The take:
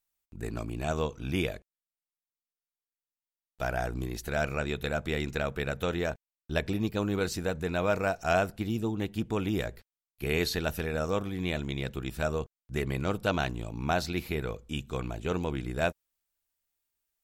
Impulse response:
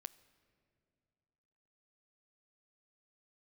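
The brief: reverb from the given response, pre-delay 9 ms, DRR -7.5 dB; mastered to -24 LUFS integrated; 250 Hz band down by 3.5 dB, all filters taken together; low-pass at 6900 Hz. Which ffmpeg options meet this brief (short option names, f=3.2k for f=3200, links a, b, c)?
-filter_complex "[0:a]lowpass=6.9k,equalizer=f=250:t=o:g=-5,asplit=2[a][b];[1:a]atrim=start_sample=2205,adelay=9[c];[b][c]afir=irnorm=-1:irlink=0,volume=13dB[d];[a][d]amix=inputs=2:normalize=0,volume=1dB"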